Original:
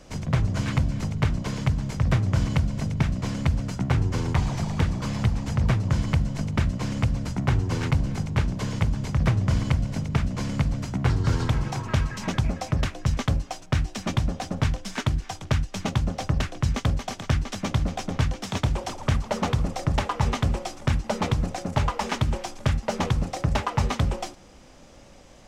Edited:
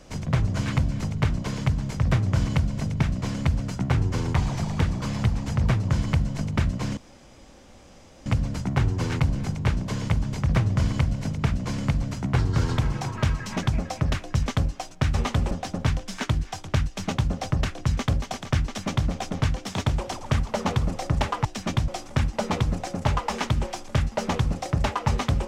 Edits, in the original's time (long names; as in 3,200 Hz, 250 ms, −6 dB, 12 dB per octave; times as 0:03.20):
0:06.97: splice in room tone 1.29 s
0:13.85–0:14.28: swap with 0:20.22–0:20.59